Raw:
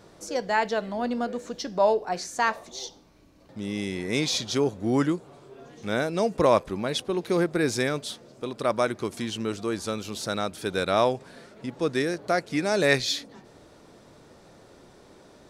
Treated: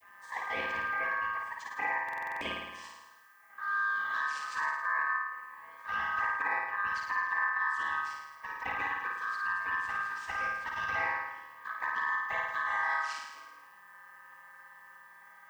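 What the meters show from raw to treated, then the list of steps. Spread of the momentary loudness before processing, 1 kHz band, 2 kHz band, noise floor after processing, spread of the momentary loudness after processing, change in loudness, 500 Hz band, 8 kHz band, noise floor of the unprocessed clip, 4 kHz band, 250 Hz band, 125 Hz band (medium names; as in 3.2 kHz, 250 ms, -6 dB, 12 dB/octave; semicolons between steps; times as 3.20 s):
12 LU, -2.5 dB, +2.5 dB, -56 dBFS, 19 LU, -6.0 dB, -23.5 dB, under -15 dB, -53 dBFS, -15.5 dB, -27.5 dB, under -20 dB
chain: vocoder on a held chord minor triad, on B2; touch-sensitive flanger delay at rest 5.5 ms, full sweep at -21 dBFS; ring modulator 1.4 kHz; added noise violet -73 dBFS; bass shelf 220 Hz -5.5 dB; compression 6:1, threshold -32 dBFS, peak gain reduction 12 dB; flutter echo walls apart 9.3 m, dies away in 1 s; buffer glitch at 2.04 s, samples 2048, times 7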